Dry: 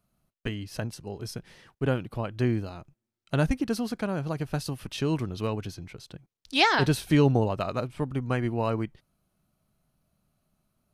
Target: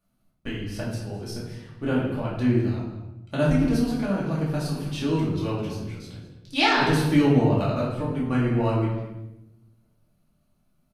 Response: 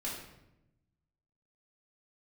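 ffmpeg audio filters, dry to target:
-filter_complex "[0:a]asplit=2[link_01][link_02];[link_02]adelay=209.9,volume=-13dB,highshelf=frequency=4000:gain=-4.72[link_03];[link_01][link_03]amix=inputs=2:normalize=0[link_04];[1:a]atrim=start_sample=2205[link_05];[link_04][link_05]afir=irnorm=-1:irlink=0"

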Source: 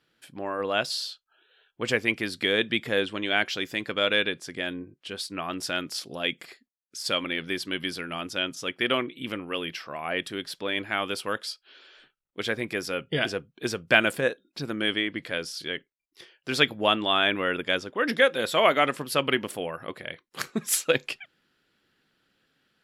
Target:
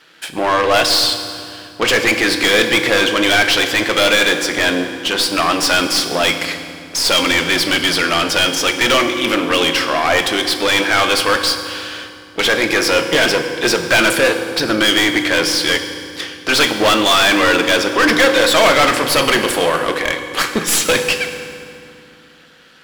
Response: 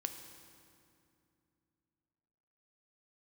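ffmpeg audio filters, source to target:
-filter_complex "[0:a]aeval=exprs='if(lt(val(0),0),0.251*val(0),val(0))':channel_layout=same,asplit=2[link_01][link_02];[link_02]highpass=frequency=720:poles=1,volume=36dB,asoftclip=type=tanh:threshold=-2.5dB[link_03];[link_01][link_03]amix=inputs=2:normalize=0,lowpass=frequency=5900:poles=1,volume=-6dB[link_04];[1:a]atrim=start_sample=2205,asetrate=43218,aresample=44100[link_05];[link_04][link_05]afir=irnorm=-1:irlink=0"

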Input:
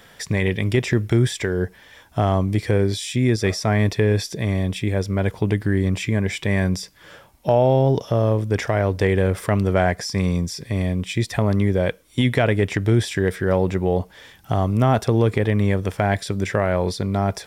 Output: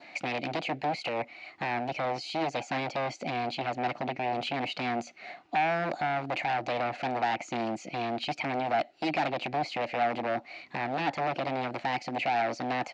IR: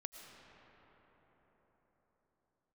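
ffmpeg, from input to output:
-af "adynamicequalizer=threshold=0.01:dfrequency=1800:dqfactor=2.2:tfrequency=1800:tqfactor=2.2:attack=5:release=100:ratio=0.375:range=2.5:mode=cutabove:tftype=bell,alimiter=limit=-13.5dB:level=0:latency=1:release=292,asetrate=41625,aresample=44100,atempo=1.05946,aresample=16000,aeval=exprs='0.0841*(abs(mod(val(0)/0.0841+3,4)-2)-1)':channel_layout=same,aresample=44100,crystalizer=i=3:c=0,asetrate=59535,aresample=44100,highpass=270,equalizer=frequency=310:width_type=q:width=4:gain=8,equalizer=frequency=450:width_type=q:width=4:gain=-6,equalizer=frequency=730:width_type=q:width=4:gain=10,equalizer=frequency=1100:width_type=q:width=4:gain=-5,equalizer=frequency=2300:width_type=q:width=4:gain=5,equalizer=frequency=3300:width_type=q:width=4:gain=-6,lowpass=frequency=3700:width=0.5412,lowpass=frequency=3700:width=1.3066,volume=-3dB"

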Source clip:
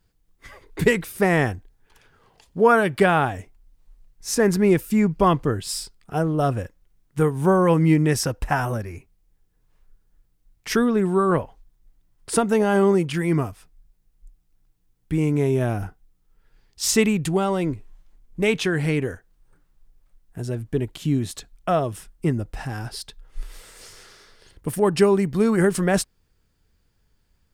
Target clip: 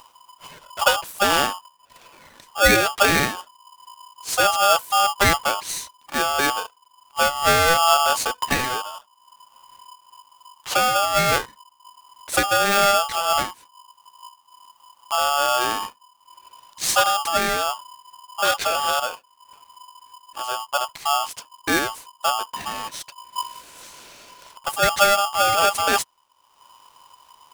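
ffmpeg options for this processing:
ffmpeg -i in.wav -af "acompressor=mode=upward:threshold=-38dB:ratio=2.5,aeval=exprs='val(0)*sgn(sin(2*PI*1000*n/s))':channel_layout=same" out.wav

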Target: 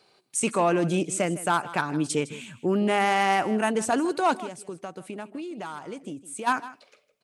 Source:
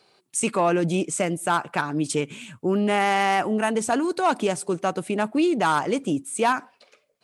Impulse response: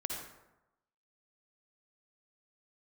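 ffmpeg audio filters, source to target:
-filter_complex "[0:a]asplit=3[link_01][link_02][link_03];[link_01]afade=type=out:start_time=4.39:duration=0.02[link_04];[link_02]acompressor=threshold=-33dB:ratio=6,afade=type=in:start_time=4.39:duration=0.02,afade=type=out:start_time=6.46:duration=0.02[link_05];[link_03]afade=type=in:start_time=6.46:duration=0.02[link_06];[link_04][link_05][link_06]amix=inputs=3:normalize=0,aecho=1:1:158:0.15,volume=-1.5dB"

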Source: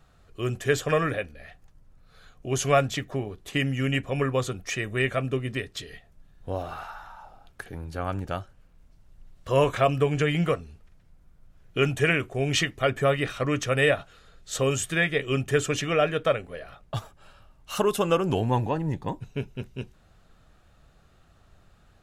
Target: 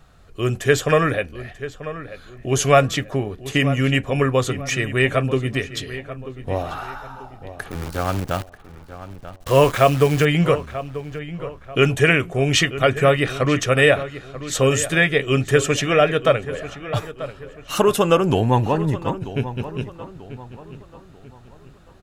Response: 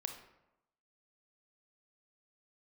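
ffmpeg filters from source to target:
-filter_complex "[0:a]asettb=1/sr,asplit=3[link_01][link_02][link_03];[link_01]atrim=end=7.714[link_04];[link_02]atrim=start=7.71:end=10.25,asetpts=PTS-STARTPTS,afade=type=in:duration=0.004:curve=qsin,afade=type=out:start_time=2.536:duration=0.004:curve=qsin,acrusher=bits=7:dc=4:mix=0:aa=0.000001[link_05];[link_03]atrim=start=10.246[link_06];[link_04][link_05]acrossfade=duration=0.004:curve1=hsin:curve2=qsin[link_07];[link_07][link_06]acrossfade=duration=0.004:curve1=qsin:curve2=hsin,asplit=2[link_08][link_09];[link_09]adelay=938,lowpass=frequency=3100:poles=1,volume=-13.5dB,asplit=2[link_10][link_11];[link_11]adelay=938,lowpass=frequency=3100:poles=1,volume=0.38,asplit=2[link_12][link_13];[link_13]adelay=938,lowpass=frequency=3100:poles=1,volume=0.38,asplit=2[link_14][link_15];[link_15]adelay=938,lowpass=frequency=3100:poles=1,volume=0.38[link_16];[link_08][link_10][link_12][link_14][link_16]amix=inputs=5:normalize=0,volume=7dB"

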